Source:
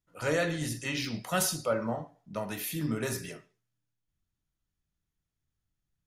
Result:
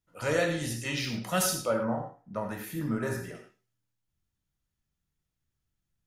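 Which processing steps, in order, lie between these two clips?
1.74–3.35 s: resonant high shelf 2.1 kHz -8.5 dB, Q 1.5; gated-style reverb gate 130 ms flat, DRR 4.5 dB

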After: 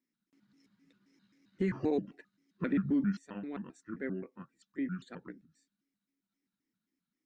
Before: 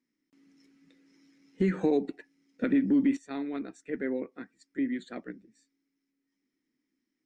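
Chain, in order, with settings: pitch shift switched off and on -5.5 st, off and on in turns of 132 ms; dynamic bell 1.3 kHz, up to +3 dB, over -43 dBFS, Q 0.9; trim -5.5 dB

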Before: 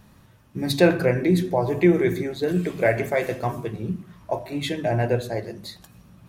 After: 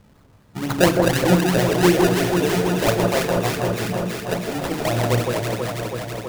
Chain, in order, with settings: decimation with a swept rate 28×, swing 100% 4 Hz; echo whose repeats swap between lows and highs 163 ms, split 1.3 kHz, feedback 86%, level -2.5 dB

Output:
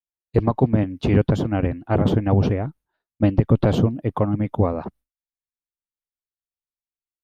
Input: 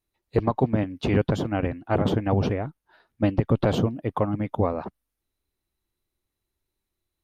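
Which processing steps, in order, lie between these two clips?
bass shelf 370 Hz +6.5 dB; expander -42 dBFS

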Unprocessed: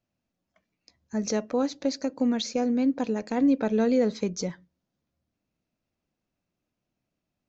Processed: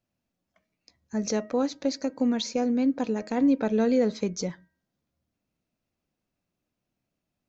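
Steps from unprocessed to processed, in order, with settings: de-hum 316.5 Hz, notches 7

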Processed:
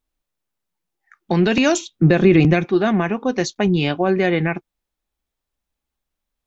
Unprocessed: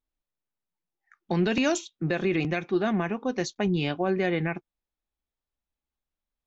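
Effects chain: 1.81–2.66 s: bass shelf 390 Hz +9 dB; trim +8 dB

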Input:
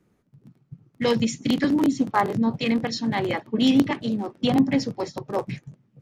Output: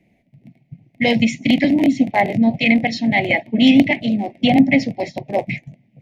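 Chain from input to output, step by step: FFT filter 140 Hz 0 dB, 250 Hz +4 dB, 440 Hz -6 dB, 680 Hz +11 dB, 1.3 kHz -27 dB, 2.1 kHz +14 dB, 3.2 kHz +3 dB, 5 kHz -3 dB, 7.7 kHz -7 dB, 11 kHz -5 dB; trim +4 dB

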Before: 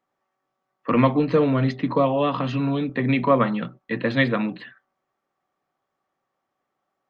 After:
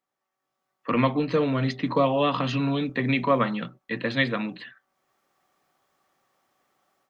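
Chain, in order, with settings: treble shelf 2.5 kHz +9.5 dB; level rider gain up to 15 dB; trim -9 dB

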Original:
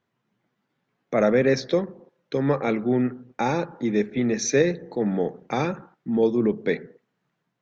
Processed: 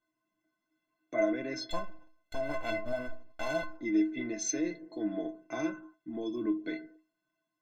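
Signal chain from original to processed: 1.70–3.76 s: comb filter that takes the minimum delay 1.4 ms; peak limiter -14 dBFS, peak gain reduction 6.5 dB; inharmonic resonator 310 Hz, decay 0.32 s, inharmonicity 0.03; trim +9 dB

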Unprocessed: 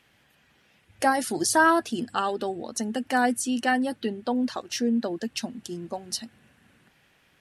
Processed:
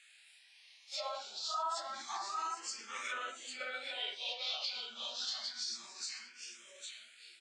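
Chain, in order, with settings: phase randomisation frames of 200 ms; frequency weighting ITU-R 468; low-pass that closes with the level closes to 1.6 kHz, closed at -21.5 dBFS; differentiator; on a send: feedback delay 798 ms, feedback 27%, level -5.5 dB; on the sum: formant shift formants -4 st; peak limiter -31 dBFS, peak gain reduction 7.5 dB; barber-pole phaser +0.28 Hz; trim +4 dB

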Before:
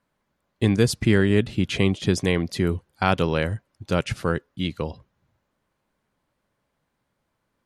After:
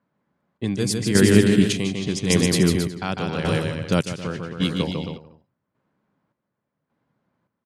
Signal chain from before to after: high-pass 180 Hz 12 dB/octave; tone controls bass +10 dB, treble +13 dB; on a send: bouncing-ball echo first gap 150 ms, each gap 0.8×, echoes 5; on the sum: square tremolo 0.87 Hz, depth 60%, duty 50%; level-controlled noise filter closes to 1.7 kHz, open at -16.5 dBFS

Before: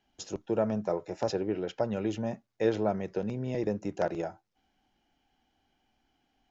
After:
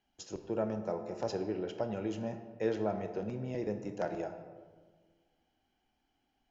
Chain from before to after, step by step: band-stop 3.6 kHz, Q 27; on a send: reverberation RT60 1.5 s, pre-delay 17 ms, DRR 7 dB; on the sum: trim -5.5 dB

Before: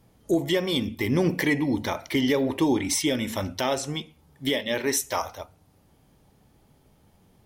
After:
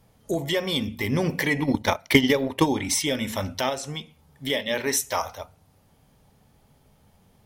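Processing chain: peaking EQ 330 Hz -8.5 dB 0.41 oct; hum notches 60/120/180/240 Hz; 1.56–2.68 s: transient shaper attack +12 dB, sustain -10 dB; 3.69–4.50 s: compression 1.5:1, threshold -35 dBFS, peak gain reduction 5 dB; trim +1.5 dB

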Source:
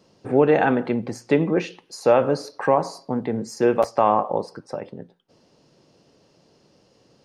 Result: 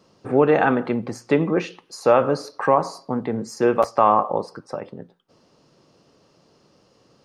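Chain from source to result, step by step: peaking EQ 1.2 kHz +7 dB 0.43 oct

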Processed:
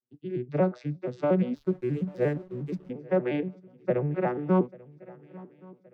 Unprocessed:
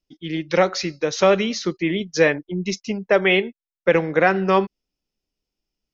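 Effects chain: vocoder on a broken chord minor triad, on B2, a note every 118 ms; low-pass 1.3 kHz 6 dB/octave; shuffle delay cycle 1121 ms, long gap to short 3:1, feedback 42%, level -22.5 dB; 1.55–2.90 s: hysteresis with a dead band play -40.5 dBFS; trim -6.5 dB

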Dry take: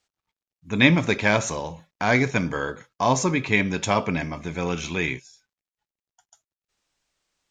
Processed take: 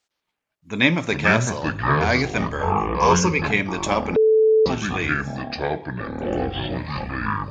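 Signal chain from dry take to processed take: bass shelf 130 Hz -9 dB; ever faster or slower copies 106 ms, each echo -6 st, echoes 3; 2.62–3.42 s: rippled EQ curve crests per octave 0.81, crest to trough 13 dB; 4.16–4.66 s: bleep 438 Hz -12 dBFS

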